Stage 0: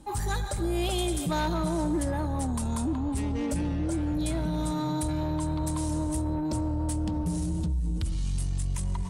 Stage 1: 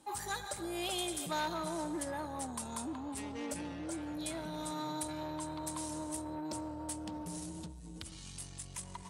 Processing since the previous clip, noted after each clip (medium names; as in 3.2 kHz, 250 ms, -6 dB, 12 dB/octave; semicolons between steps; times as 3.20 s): high-pass 660 Hz 6 dB/octave; trim -3.5 dB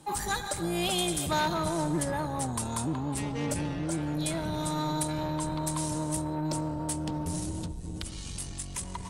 octave divider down 1 oct, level +1 dB; trim +7.5 dB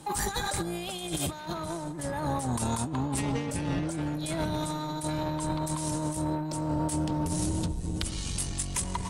compressor with a negative ratio -33 dBFS, ratio -0.5; trim +3 dB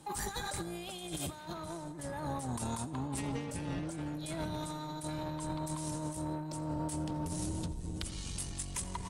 feedback delay 84 ms, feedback 53%, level -20 dB; trim -7.5 dB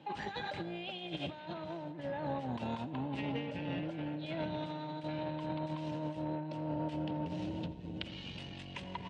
cabinet simulation 140–3500 Hz, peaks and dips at 390 Hz -3 dB, 560 Hz +4 dB, 1.2 kHz -9 dB, 2.8 kHz +7 dB; trim +1 dB